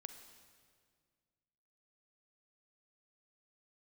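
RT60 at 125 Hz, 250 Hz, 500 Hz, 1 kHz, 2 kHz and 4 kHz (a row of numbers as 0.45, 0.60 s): 2.4, 2.3, 2.1, 1.8, 1.7, 1.6 s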